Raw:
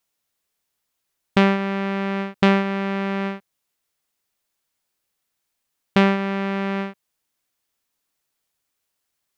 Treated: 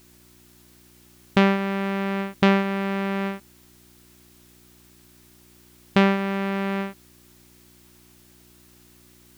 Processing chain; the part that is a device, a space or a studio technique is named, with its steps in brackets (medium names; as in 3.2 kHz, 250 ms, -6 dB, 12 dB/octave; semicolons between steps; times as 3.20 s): video cassette with head-switching buzz (mains buzz 60 Hz, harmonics 6, -55 dBFS -1 dB/octave; white noise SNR 29 dB); trim -1.5 dB